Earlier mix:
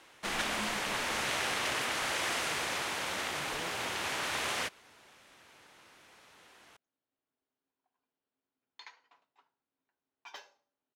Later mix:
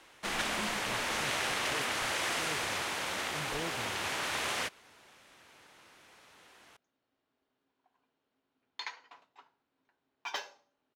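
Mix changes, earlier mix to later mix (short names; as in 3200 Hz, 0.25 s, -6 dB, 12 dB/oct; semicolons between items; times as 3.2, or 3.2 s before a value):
speech +7.5 dB; second sound +10.5 dB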